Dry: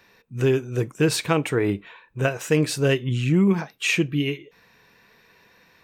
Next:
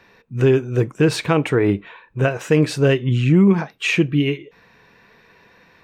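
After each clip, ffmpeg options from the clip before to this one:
-filter_complex "[0:a]asplit=2[s0][s1];[s1]alimiter=limit=0.224:level=0:latency=1:release=111,volume=1[s2];[s0][s2]amix=inputs=2:normalize=0,lowpass=f=2600:p=1"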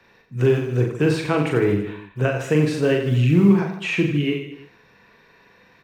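-filter_complex "[0:a]acrossover=split=100|430|2700[s0][s1][s2][s3];[s0]acrusher=samples=25:mix=1:aa=0.000001:lfo=1:lforange=40:lforate=2.1[s4];[s3]alimiter=level_in=1.12:limit=0.0631:level=0:latency=1,volume=0.891[s5];[s4][s1][s2][s5]amix=inputs=4:normalize=0,aecho=1:1:40|90|152.5|230.6|328.3:0.631|0.398|0.251|0.158|0.1,volume=0.631"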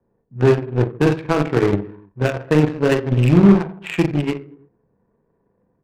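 -af "adynamicsmooth=sensitivity=7:basefreq=530,aeval=exprs='0.562*(cos(1*acos(clip(val(0)/0.562,-1,1)))-cos(1*PI/2))+0.0501*(cos(7*acos(clip(val(0)/0.562,-1,1)))-cos(7*PI/2))':c=same,adynamicsmooth=sensitivity=2.5:basefreq=1200,volume=1.5"

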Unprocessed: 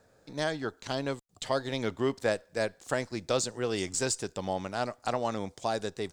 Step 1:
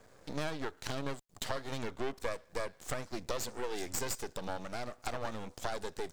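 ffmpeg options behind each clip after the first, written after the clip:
-af "acompressor=threshold=0.0141:ratio=4,aeval=exprs='max(val(0),0)':c=same,volume=2.37"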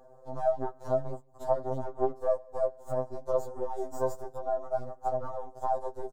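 -filter_complex "[0:a]firequalizer=gain_entry='entry(270,0);entry(630,15);entry(2200,-24);entry(6700,-11)':delay=0.05:min_phase=1,asplit=2[s0][s1];[s1]adelay=157.4,volume=0.0355,highshelf=f=4000:g=-3.54[s2];[s0][s2]amix=inputs=2:normalize=0,afftfilt=real='re*2.45*eq(mod(b,6),0)':imag='im*2.45*eq(mod(b,6),0)':win_size=2048:overlap=0.75"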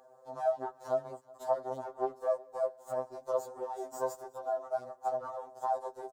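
-af "highpass=f=840:p=1,aecho=1:1:371:0.0631,volume=1.19"

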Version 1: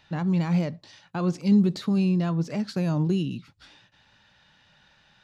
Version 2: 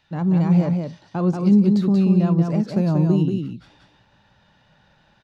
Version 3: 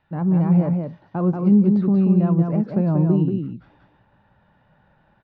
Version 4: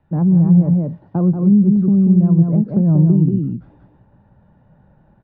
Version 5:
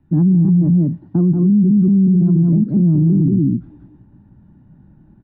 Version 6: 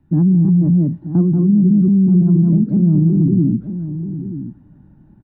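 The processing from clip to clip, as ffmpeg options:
-filter_complex "[0:a]acrossover=split=1100[s0][s1];[s0]dynaudnorm=f=100:g=3:m=3.16[s2];[s2][s1]amix=inputs=2:normalize=0,aecho=1:1:184:0.596,volume=0.596"
-af "lowpass=1600"
-filter_complex "[0:a]tiltshelf=f=940:g=10,acrossover=split=170[s0][s1];[s1]acompressor=threshold=0.112:ratio=6[s2];[s0][s2]amix=inputs=2:normalize=0"
-af "lowshelf=f=400:t=q:w=3:g=8,alimiter=limit=0.631:level=0:latency=1:release=23,volume=0.631"
-filter_complex "[0:a]asplit=2[s0][s1];[s1]adelay=932.9,volume=0.282,highshelf=f=4000:g=-21[s2];[s0][s2]amix=inputs=2:normalize=0"

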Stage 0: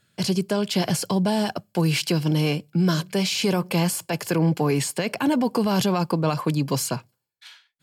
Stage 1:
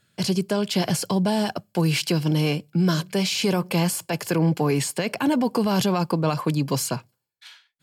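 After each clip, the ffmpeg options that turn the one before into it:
-af anull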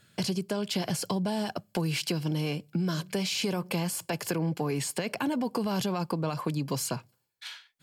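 -af "acompressor=threshold=0.0178:ratio=3,volume=1.58"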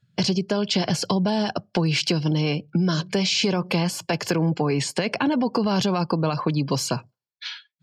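-af "highshelf=f=7300:t=q:w=1.5:g=-7.5,afftdn=nr=23:nf=-50,volume=2.37"

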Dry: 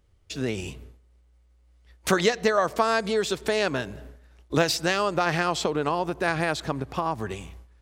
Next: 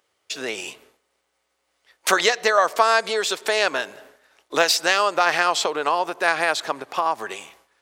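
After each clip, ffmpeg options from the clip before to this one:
-af "highpass=610,volume=2.24"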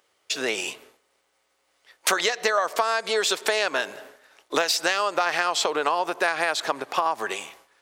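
-af "acompressor=threshold=0.0891:ratio=12,lowshelf=f=120:g=-7.5,volume=1.41"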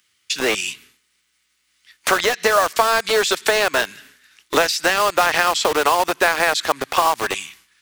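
-filter_complex "[0:a]acrossover=split=250|1500|2000[s0][s1][s2][s3];[s1]acrusher=bits=4:mix=0:aa=0.000001[s4];[s3]alimiter=limit=0.126:level=0:latency=1:release=202[s5];[s0][s4][s2][s5]amix=inputs=4:normalize=0,volume=2.11"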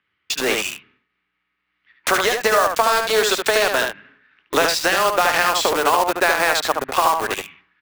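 -filter_complex "[0:a]aecho=1:1:73:0.596,acrossover=split=2500[s0][s1];[s1]acrusher=bits=3:mix=0:aa=0.5[s2];[s0][s2]amix=inputs=2:normalize=0,volume=0.891"

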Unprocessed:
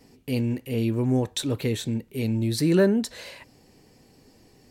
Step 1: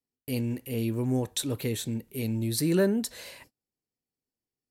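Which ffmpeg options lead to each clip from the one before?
-af "agate=range=0.0178:threshold=0.00398:ratio=16:detection=peak,equalizer=f=12000:w=0.71:g=11,volume=0.596"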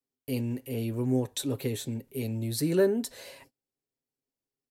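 -filter_complex "[0:a]aecho=1:1:7.4:0.44,acrossover=split=350|660|3600[s0][s1][s2][s3];[s1]acontrast=84[s4];[s0][s4][s2][s3]amix=inputs=4:normalize=0,volume=0.631"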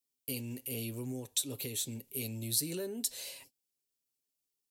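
-af "alimiter=limit=0.0668:level=0:latency=1:release=297,aexciter=amount=4.6:drive=3.4:freq=2400,volume=0.398"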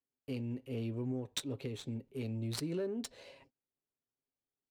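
-af "adynamicsmooth=sensitivity=3.5:basefreq=1400,volume=1.33"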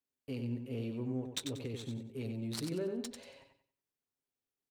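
-af "aecho=1:1:93|186|279|372:0.473|0.142|0.0426|0.0128,volume=0.891"

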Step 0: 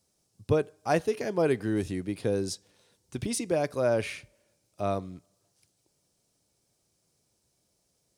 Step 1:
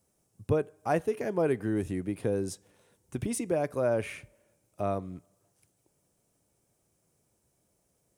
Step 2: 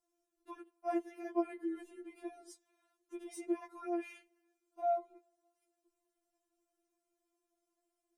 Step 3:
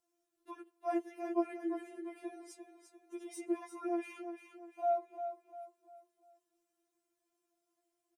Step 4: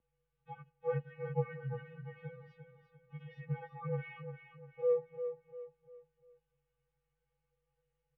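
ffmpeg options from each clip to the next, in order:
-filter_complex "[0:a]equalizer=f=4500:t=o:w=1.1:g=-12,asplit=2[s0][s1];[s1]acompressor=threshold=0.02:ratio=6,volume=1.12[s2];[s0][s2]amix=inputs=2:normalize=0,volume=0.631"
-af "highshelf=f=2700:g=-9.5,afftfilt=real='re*4*eq(mod(b,16),0)':imag='im*4*eq(mod(b,16),0)':win_size=2048:overlap=0.75,volume=0.562"
-filter_complex "[0:a]highpass=f=73:p=1,asplit=2[s0][s1];[s1]aecho=0:1:348|696|1044|1392:0.355|0.135|0.0512|0.0195[s2];[s0][s2]amix=inputs=2:normalize=0,volume=1.12"
-af "aeval=exprs='val(0)+0.001*(sin(2*PI*50*n/s)+sin(2*PI*2*50*n/s)/2+sin(2*PI*3*50*n/s)/3+sin(2*PI*4*50*n/s)/4+sin(2*PI*5*50*n/s)/5)':c=same,highpass=f=370:t=q:w=0.5412,highpass=f=370:t=q:w=1.307,lowpass=f=3200:t=q:w=0.5176,lowpass=f=3200:t=q:w=0.7071,lowpass=f=3200:t=q:w=1.932,afreqshift=-200,volume=1.19"

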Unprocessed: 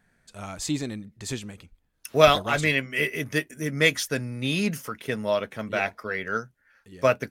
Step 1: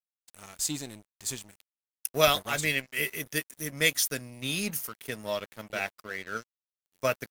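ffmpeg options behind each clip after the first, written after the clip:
-af "aemphasis=mode=production:type=75fm,aeval=exprs='sgn(val(0))*max(abs(val(0))-0.0133,0)':c=same,volume=0.501"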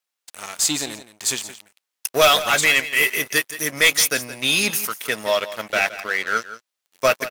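-filter_complex "[0:a]asplit=2[s0][s1];[s1]highpass=f=720:p=1,volume=12.6,asoftclip=type=tanh:threshold=0.596[s2];[s0][s2]amix=inputs=2:normalize=0,lowpass=f=7000:p=1,volume=0.501,aecho=1:1:170:0.188"

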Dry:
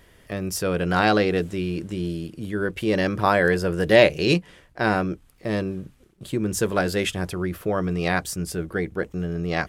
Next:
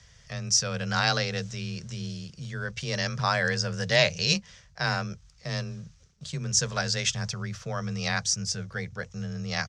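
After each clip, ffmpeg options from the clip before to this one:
-af "firequalizer=gain_entry='entry(120,0);entry(290,-26);entry(450,-11);entry(1300,-4);entry(2900,-3);entry(5800,13);entry(12000,-30)':delay=0.05:min_phase=1,afreqshift=21"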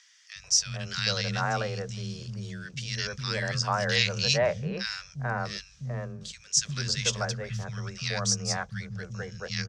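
-filter_complex "[0:a]acrossover=split=230|1300[s0][s1][s2];[s1]acompressor=mode=upward:threshold=0.00316:ratio=2.5[s3];[s0][s3][s2]amix=inputs=3:normalize=0,acrossover=split=220|1700[s4][s5][s6];[s4]adelay=350[s7];[s5]adelay=440[s8];[s7][s8][s6]amix=inputs=3:normalize=0"

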